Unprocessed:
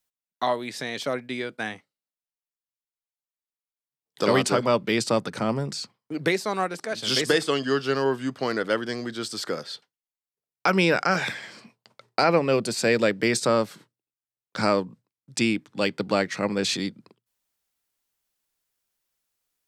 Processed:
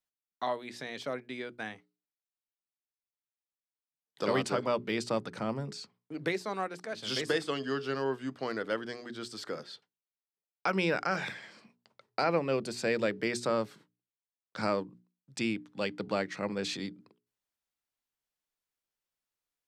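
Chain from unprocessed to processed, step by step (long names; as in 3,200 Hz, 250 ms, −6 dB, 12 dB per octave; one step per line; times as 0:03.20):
high-shelf EQ 6,000 Hz −7.5 dB
mains-hum notches 60/120/180/240/300/360/420 Hz
level −8 dB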